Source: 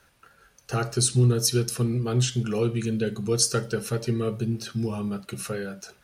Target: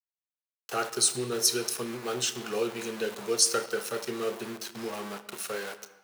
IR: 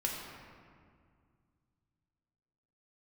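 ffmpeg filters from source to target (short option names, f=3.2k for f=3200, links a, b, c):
-filter_complex "[0:a]aeval=exprs='val(0)*gte(abs(val(0)),0.02)':c=same,highpass=450,asplit=2[a][b];[1:a]atrim=start_sample=2205,afade=t=out:st=0.35:d=0.01,atrim=end_sample=15876,adelay=29[c];[b][c]afir=irnorm=-1:irlink=0,volume=-14dB[d];[a][d]amix=inputs=2:normalize=0"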